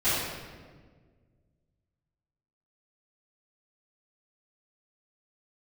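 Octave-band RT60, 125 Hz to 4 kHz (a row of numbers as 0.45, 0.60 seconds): 2.5, 2.1, 1.8, 1.4, 1.3, 1.0 seconds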